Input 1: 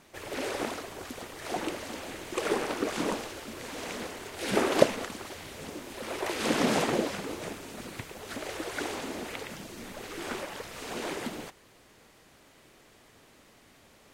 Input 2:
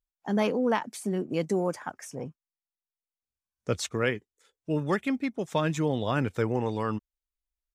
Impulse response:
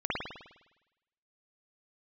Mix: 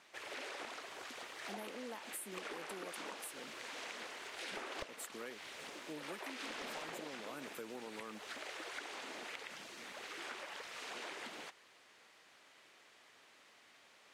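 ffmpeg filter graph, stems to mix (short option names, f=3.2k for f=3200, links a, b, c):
-filter_complex "[0:a]bandpass=f=2.4k:t=q:w=0.5:csg=0,volume=-2dB[a];[1:a]highpass=f=210:w=0.5412,highpass=f=210:w=1.3066,aexciter=amount=15.5:drive=3.4:freq=8.2k,adelay=1200,volume=-14dB[b];[a][b]amix=inputs=2:normalize=0,aeval=exprs='clip(val(0),-1,0.0376)':c=same,acompressor=threshold=-43dB:ratio=6"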